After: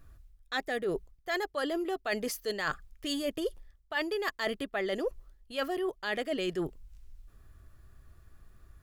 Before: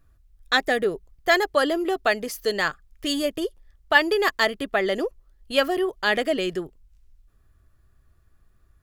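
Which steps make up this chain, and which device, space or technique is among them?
compression on the reversed sound (reversed playback; downward compressor 12 to 1, threshold −34 dBFS, peak gain reduction 23 dB; reversed playback)
level +4.5 dB

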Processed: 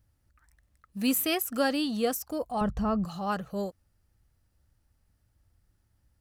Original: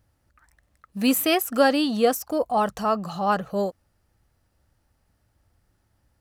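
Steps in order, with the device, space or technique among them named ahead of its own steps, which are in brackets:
0:02.61–0:03.05: RIAA equalisation playback
smiley-face EQ (low-shelf EQ 120 Hz +7.5 dB; parametric band 700 Hz −3.5 dB 1.6 octaves; high-shelf EQ 5,600 Hz +4 dB)
level −6.5 dB

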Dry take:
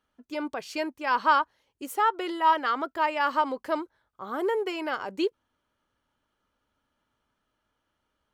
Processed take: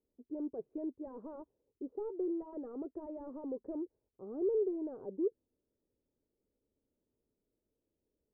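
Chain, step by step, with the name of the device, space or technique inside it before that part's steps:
overdriven synthesiser ladder filter (soft clipping −28.5 dBFS, distortion −6 dB; transistor ladder low-pass 490 Hz, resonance 55%)
level +3 dB

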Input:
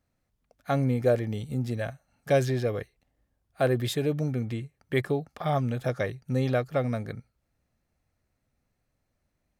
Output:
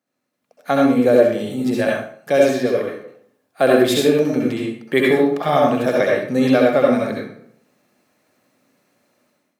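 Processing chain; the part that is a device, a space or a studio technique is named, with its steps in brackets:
far laptop microphone (convolution reverb RT60 0.65 s, pre-delay 61 ms, DRR −3 dB; high-pass filter 190 Hz 24 dB per octave; automatic gain control gain up to 15 dB)
level −1 dB

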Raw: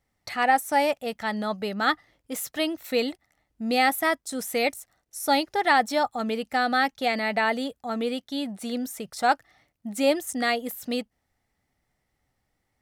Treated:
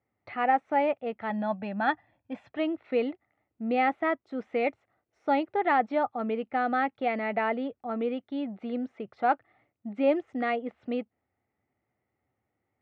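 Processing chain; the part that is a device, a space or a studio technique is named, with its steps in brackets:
bass cabinet (loudspeaker in its box 86–2,300 Hz, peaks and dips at 160 Hz −7 dB, 370 Hz +4 dB, 970 Hz −3 dB, 1,700 Hz −7 dB)
0:01.30–0:02.51: comb filter 1.2 ms, depth 79%
level −2 dB

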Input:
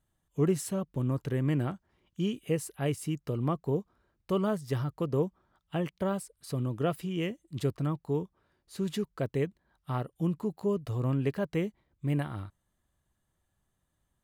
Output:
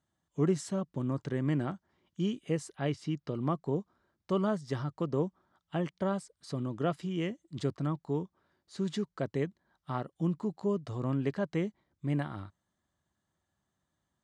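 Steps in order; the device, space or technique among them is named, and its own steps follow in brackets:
0:02.75–0:03.35: high shelf with overshoot 6,100 Hz −8 dB, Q 1.5
car door speaker (loudspeaker in its box 100–7,500 Hz, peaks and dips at 120 Hz −5 dB, 460 Hz −4 dB, 2,600 Hz −6 dB)

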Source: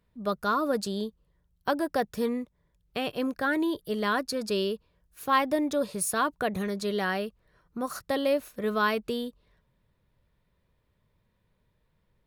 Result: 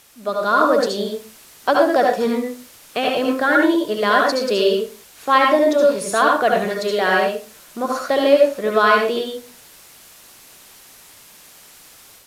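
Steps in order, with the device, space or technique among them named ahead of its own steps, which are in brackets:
filmed off a television (band-pass filter 280–6,200 Hz; parametric band 660 Hz +6 dB 0.27 octaves; convolution reverb RT60 0.35 s, pre-delay 66 ms, DRR −0.5 dB; white noise bed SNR 25 dB; automatic gain control gain up to 6 dB; level +3 dB; AAC 96 kbit/s 32,000 Hz)

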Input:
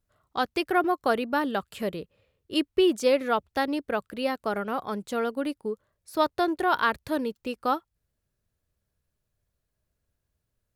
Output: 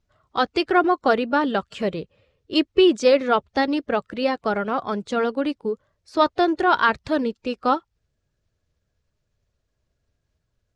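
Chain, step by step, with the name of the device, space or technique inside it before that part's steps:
clip after many re-uploads (low-pass filter 6,800 Hz 24 dB per octave; spectral magnitudes quantised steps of 15 dB)
level +6 dB

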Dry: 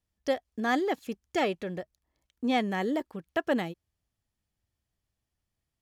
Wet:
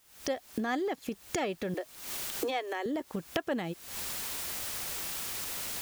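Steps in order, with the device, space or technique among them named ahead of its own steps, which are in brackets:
0:01.74–0:02.86: Butterworth high-pass 290 Hz 96 dB per octave
cheap recorder with automatic gain (white noise bed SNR 28 dB; camcorder AGC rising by 79 dB per second)
level −5.5 dB

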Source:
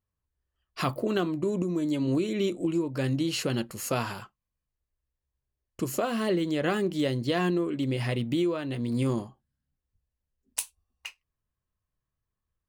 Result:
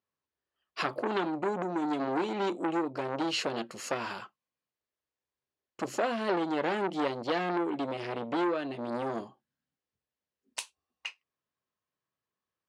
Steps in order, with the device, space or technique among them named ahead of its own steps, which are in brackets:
public-address speaker with an overloaded transformer (saturating transformer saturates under 2,000 Hz; band-pass filter 270–5,100 Hz)
level +2 dB

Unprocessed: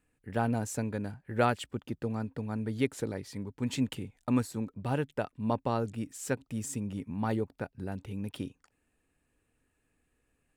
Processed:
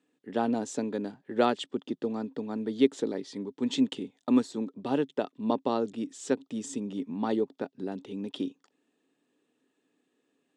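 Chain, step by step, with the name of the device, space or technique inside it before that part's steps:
television speaker (loudspeaker in its box 190–7,400 Hz, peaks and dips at 280 Hz +6 dB, 400 Hz +6 dB, 1,500 Hz −5 dB, 2,300 Hz −6 dB, 3,500 Hz +8 dB)
level +1.5 dB

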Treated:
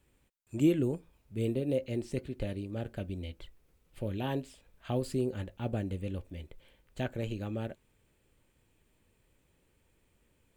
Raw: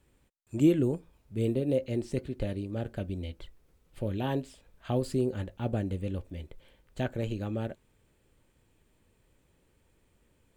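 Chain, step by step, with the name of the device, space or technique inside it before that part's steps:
presence and air boost (parametric band 2,500 Hz +3 dB; high-shelf EQ 9,600 Hz +4.5 dB)
level −3 dB

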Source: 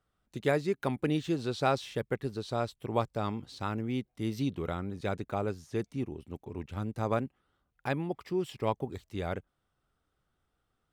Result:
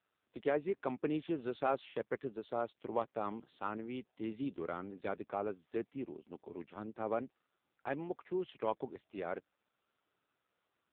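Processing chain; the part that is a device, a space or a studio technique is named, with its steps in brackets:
0:06.56–0:07.99: dynamic equaliser 1,100 Hz, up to −4 dB, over −44 dBFS, Q 2
telephone (band-pass filter 270–3,300 Hz; soft clipping −17.5 dBFS, distortion −20 dB; level −2.5 dB; AMR narrowband 5.9 kbit/s 8,000 Hz)

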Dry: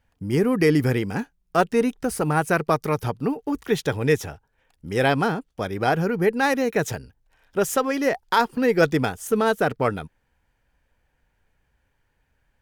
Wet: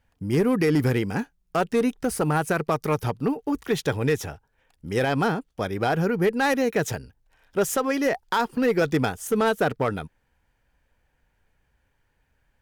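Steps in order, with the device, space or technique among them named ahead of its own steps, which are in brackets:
limiter into clipper (brickwall limiter −12 dBFS, peak gain reduction 6 dB; hard clipping −15 dBFS, distortion −22 dB)

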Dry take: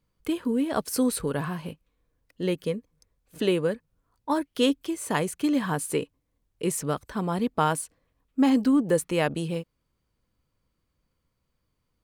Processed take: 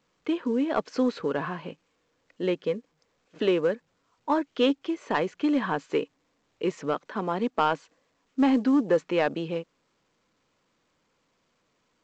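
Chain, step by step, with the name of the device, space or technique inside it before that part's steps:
0:06.94–0:07.60: high-pass filter 160 Hz 24 dB per octave
telephone (band-pass filter 260–3,000 Hz; soft clipping −14.5 dBFS, distortion −21 dB; level +2.5 dB; A-law companding 128 kbit/s 16,000 Hz)

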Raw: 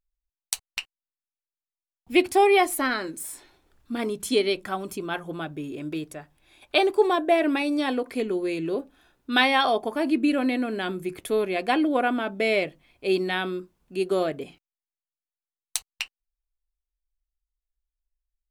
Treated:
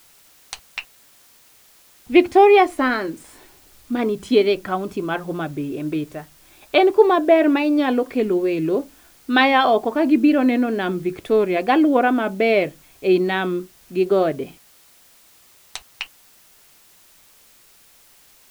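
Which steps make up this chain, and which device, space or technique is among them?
cassette deck with a dirty head (head-to-tape spacing loss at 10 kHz 22 dB; tape wow and flutter; white noise bed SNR 32 dB)
level +8 dB

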